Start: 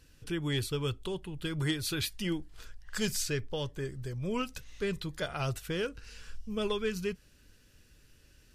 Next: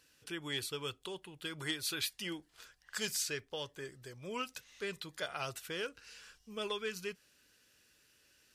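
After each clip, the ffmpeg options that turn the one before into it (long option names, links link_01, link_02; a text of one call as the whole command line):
ffmpeg -i in.wav -af "highpass=frequency=710:poles=1,volume=-1.5dB" out.wav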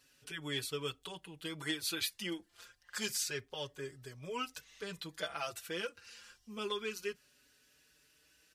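ffmpeg -i in.wav -filter_complex "[0:a]asplit=2[link_01][link_02];[link_02]adelay=5,afreqshift=0.28[link_03];[link_01][link_03]amix=inputs=2:normalize=1,volume=3dB" out.wav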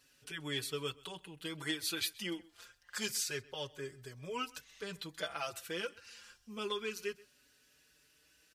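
ffmpeg -i in.wav -af "aecho=1:1:129:0.075" out.wav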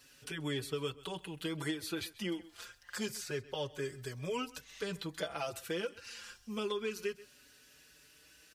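ffmpeg -i in.wav -filter_complex "[0:a]acrossover=split=840|1900[link_01][link_02][link_03];[link_01]acompressor=threshold=-41dB:ratio=4[link_04];[link_02]acompressor=threshold=-58dB:ratio=4[link_05];[link_03]acompressor=threshold=-52dB:ratio=4[link_06];[link_04][link_05][link_06]amix=inputs=3:normalize=0,volume=7dB" out.wav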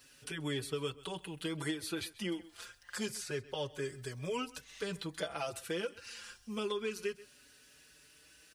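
ffmpeg -i in.wav -af "aexciter=amount=1.3:drive=1.3:freq=8800" out.wav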